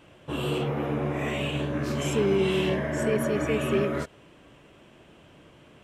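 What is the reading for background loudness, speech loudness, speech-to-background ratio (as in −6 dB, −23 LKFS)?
−29.0 LKFS, −28.5 LKFS, 0.5 dB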